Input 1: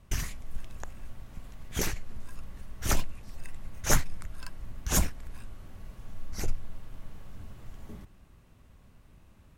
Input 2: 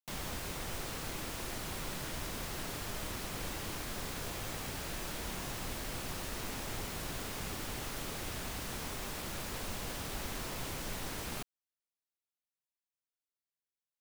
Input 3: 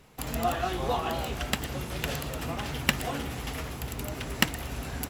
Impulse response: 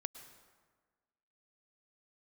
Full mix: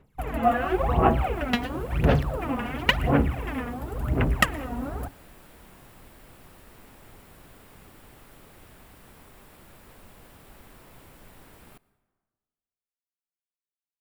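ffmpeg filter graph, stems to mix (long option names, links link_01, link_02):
-filter_complex "[1:a]bandreject=frequency=6300:width=14,adelay=350,volume=-12.5dB,asplit=2[link_01][link_02];[link_02]volume=-5dB[link_03];[2:a]afwtdn=0.01,aphaser=in_gain=1:out_gain=1:delay=4.2:decay=0.78:speed=0.95:type=sinusoidal,volume=0.5dB,asplit=2[link_04][link_05];[link_05]volume=-9.5dB[link_06];[3:a]atrim=start_sample=2205[link_07];[link_03][link_06]amix=inputs=2:normalize=0[link_08];[link_08][link_07]afir=irnorm=-1:irlink=0[link_09];[link_01][link_04][link_09]amix=inputs=3:normalize=0,equalizer=frequency=5300:width_type=o:width=1.5:gain=-9"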